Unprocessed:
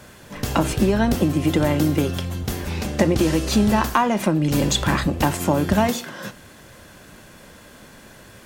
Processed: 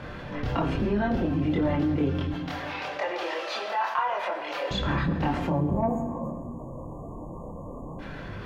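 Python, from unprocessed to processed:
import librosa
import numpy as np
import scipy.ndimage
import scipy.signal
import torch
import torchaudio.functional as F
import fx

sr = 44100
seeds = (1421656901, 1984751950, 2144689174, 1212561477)

y = fx.highpass(x, sr, hz=610.0, slope=24, at=(2.31, 4.71))
y = fx.spec_erase(y, sr, start_s=5.47, length_s=2.52, low_hz=1200.0, high_hz=6500.0)
y = fx.chorus_voices(y, sr, voices=6, hz=0.46, base_ms=26, depth_ms=4.1, mix_pct=55)
y = 10.0 ** (-10.0 / 20.0) * np.tanh(y / 10.0 ** (-10.0 / 20.0))
y = fx.air_absorb(y, sr, metres=310.0)
y = fx.rev_fdn(y, sr, rt60_s=1.1, lf_ratio=1.5, hf_ratio=0.9, size_ms=60.0, drr_db=7.5)
y = fx.env_flatten(y, sr, amount_pct=50)
y = y * 10.0 ** (-5.0 / 20.0)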